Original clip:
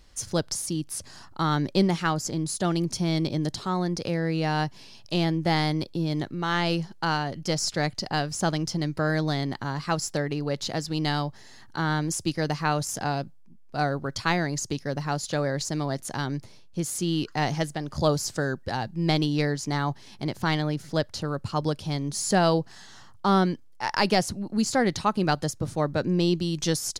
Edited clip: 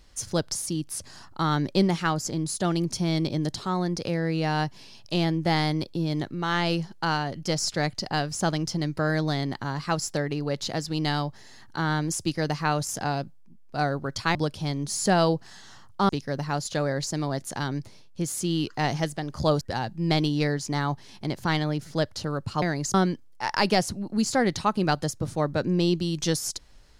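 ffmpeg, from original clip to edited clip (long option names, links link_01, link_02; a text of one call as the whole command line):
ffmpeg -i in.wav -filter_complex "[0:a]asplit=6[link_01][link_02][link_03][link_04][link_05][link_06];[link_01]atrim=end=14.352[link_07];[link_02]atrim=start=21.598:end=23.342[link_08];[link_03]atrim=start=14.668:end=18.192[link_09];[link_04]atrim=start=18.588:end=21.602[link_10];[link_05]atrim=start=14.348:end=14.672[link_11];[link_06]atrim=start=23.338[link_12];[link_07][link_08]acrossfade=duration=0.004:curve1=hsin:curve2=hsin[link_13];[link_13][link_09]acrossfade=duration=0.004:curve1=hsin:curve2=hsin[link_14];[link_14][link_10]acrossfade=duration=0.004:curve1=hsin:curve2=hsin[link_15];[link_15][link_11]acrossfade=duration=0.004:curve1=hsin:curve2=hsin[link_16];[link_16][link_12]acrossfade=duration=0.004:curve1=hsin:curve2=hsin" out.wav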